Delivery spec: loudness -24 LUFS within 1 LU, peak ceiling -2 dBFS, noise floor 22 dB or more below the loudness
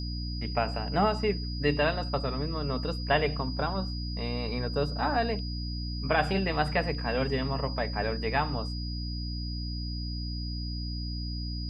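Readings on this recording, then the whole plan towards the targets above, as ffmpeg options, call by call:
hum 60 Hz; highest harmonic 300 Hz; hum level -32 dBFS; steady tone 4.9 kHz; tone level -40 dBFS; loudness -30.5 LUFS; peak level -11.0 dBFS; loudness target -24.0 LUFS
-> -af "bandreject=f=60:t=h:w=4,bandreject=f=120:t=h:w=4,bandreject=f=180:t=h:w=4,bandreject=f=240:t=h:w=4,bandreject=f=300:t=h:w=4"
-af "bandreject=f=4900:w=30"
-af "volume=2.11"

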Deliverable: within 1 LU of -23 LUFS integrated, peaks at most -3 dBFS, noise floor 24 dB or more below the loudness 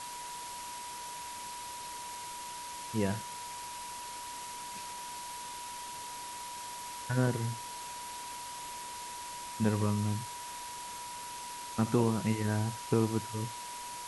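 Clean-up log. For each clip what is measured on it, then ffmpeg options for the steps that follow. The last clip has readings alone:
steady tone 970 Hz; tone level -42 dBFS; noise floor -43 dBFS; noise floor target -61 dBFS; loudness -36.5 LUFS; peak level -14.5 dBFS; loudness target -23.0 LUFS
-> -af "bandreject=f=970:w=30"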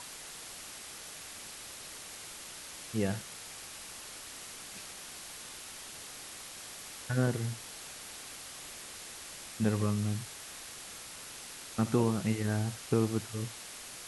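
steady tone not found; noise floor -47 dBFS; noise floor target -61 dBFS
-> -af "afftdn=nr=14:nf=-47"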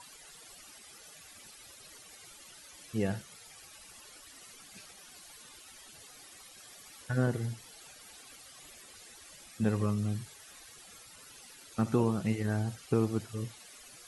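noise floor -54 dBFS; noise floor target -57 dBFS
-> -af "afftdn=nr=6:nf=-54"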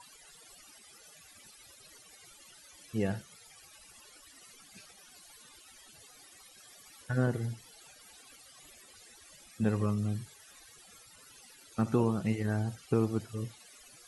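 noise floor -57 dBFS; loudness -33.0 LUFS; peak level -15.0 dBFS; loudness target -23.0 LUFS
-> -af "volume=3.16"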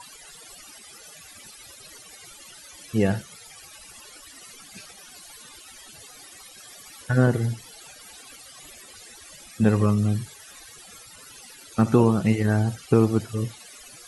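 loudness -23.0 LUFS; peak level -5.0 dBFS; noise floor -47 dBFS

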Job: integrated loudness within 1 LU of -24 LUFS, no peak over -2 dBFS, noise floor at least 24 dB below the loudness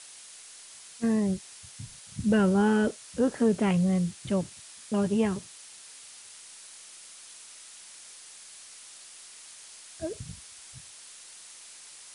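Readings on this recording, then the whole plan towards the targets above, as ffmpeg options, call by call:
noise floor -49 dBFS; noise floor target -52 dBFS; loudness -27.5 LUFS; peak level -13.0 dBFS; loudness target -24.0 LUFS
-> -af "afftdn=nr=6:nf=-49"
-af "volume=1.5"

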